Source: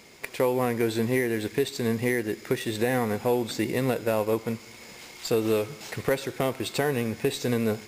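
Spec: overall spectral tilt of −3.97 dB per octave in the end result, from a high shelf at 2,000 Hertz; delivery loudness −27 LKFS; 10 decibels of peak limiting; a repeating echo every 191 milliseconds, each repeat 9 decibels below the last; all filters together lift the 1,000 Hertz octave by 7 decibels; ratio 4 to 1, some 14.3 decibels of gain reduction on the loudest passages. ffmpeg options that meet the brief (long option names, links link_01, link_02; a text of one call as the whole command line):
ffmpeg -i in.wav -af "equalizer=frequency=1000:width_type=o:gain=8.5,highshelf=frequency=2000:gain=3.5,acompressor=threshold=-35dB:ratio=4,alimiter=level_in=2dB:limit=-24dB:level=0:latency=1,volume=-2dB,aecho=1:1:191|382|573|764:0.355|0.124|0.0435|0.0152,volume=11dB" out.wav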